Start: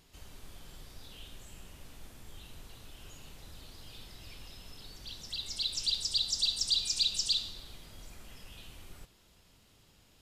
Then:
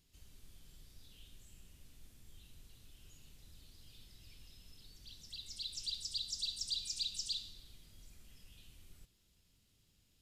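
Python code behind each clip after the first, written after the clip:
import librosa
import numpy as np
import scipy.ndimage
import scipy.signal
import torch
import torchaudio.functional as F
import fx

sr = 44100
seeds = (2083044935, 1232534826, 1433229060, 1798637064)

y = fx.peak_eq(x, sr, hz=860.0, db=-12.0, octaves=2.5)
y = y * 10.0 ** (-7.5 / 20.0)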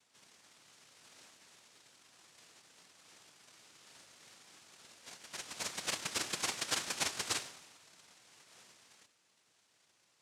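y = fx.noise_vocoder(x, sr, seeds[0], bands=1)
y = fx.attack_slew(y, sr, db_per_s=390.0)
y = y * 10.0 ** (3.5 / 20.0)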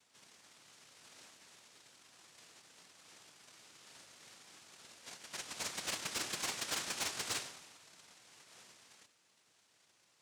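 y = 10.0 ** (-32.5 / 20.0) * np.tanh(x / 10.0 ** (-32.5 / 20.0))
y = y * 10.0 ** (1.0 / 20.0)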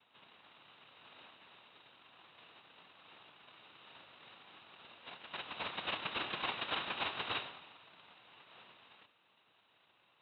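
y = scipy.signal.sosfilt(scipy.signal.cheby1(6, 6, 3900.0, 'lowpass', fs=sr, output='sos'), x)
y = y * 10.0 ** (6.5 / 20.0)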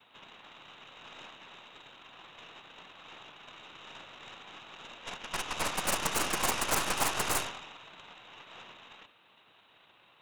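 y = fx.tracing_dist(x, sr, depth_ms=0.37)
y = y * 10.0 ** (9.0 / 20.0)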